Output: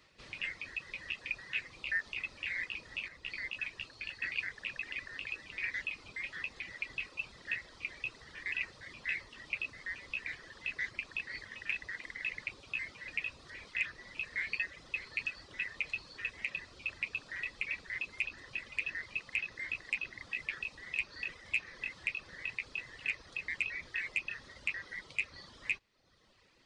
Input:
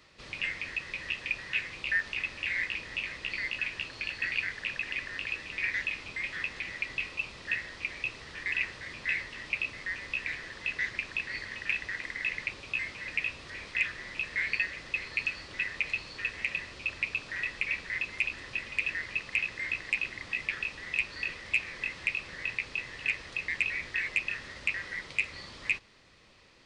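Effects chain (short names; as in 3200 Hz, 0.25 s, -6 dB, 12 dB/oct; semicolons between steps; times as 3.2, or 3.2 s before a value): reverb removal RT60 0.92 s; 3.08–4.56 three-band expander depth 40%; gain -5 dB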